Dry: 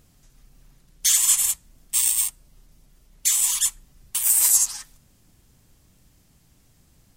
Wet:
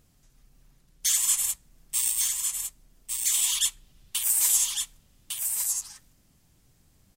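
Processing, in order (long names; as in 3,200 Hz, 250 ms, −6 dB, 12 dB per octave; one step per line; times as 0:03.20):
0:03.34–0:04.24: parametric band 3,300 Hz +10 dB 0.99 octaves
on a send: single-tap delay 1,155 ms −5 dB
on the sum: level −5.5 dB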